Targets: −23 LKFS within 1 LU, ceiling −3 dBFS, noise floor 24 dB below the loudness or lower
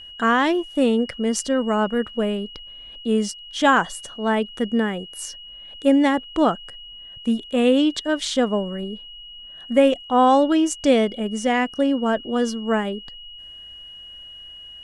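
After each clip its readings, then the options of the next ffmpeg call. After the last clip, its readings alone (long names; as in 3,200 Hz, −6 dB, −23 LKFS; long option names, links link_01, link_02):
interfering tone 2,900 Hz; level of the tone −38 dBFS; integrated loudness −21.0 LKFS; sample peak −4.5 dBFS; target loudness −23.0 LKFS
→ -af "bandreject=frequency=2900:width=30"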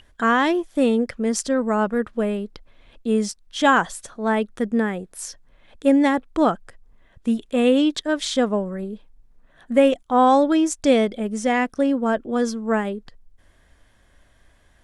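interfering tone none found; integrated loudness −21.0 LKFS; sample peak −4.5 dBFS; target loudness −23.0 LKFS
→ -af "volume=-2dB"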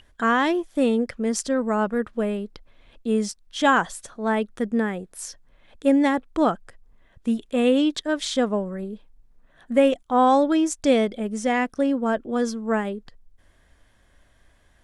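integrated loudness −23.0 LKFS; sample peak −6.5 dBFS; background noise floor −59 dBFS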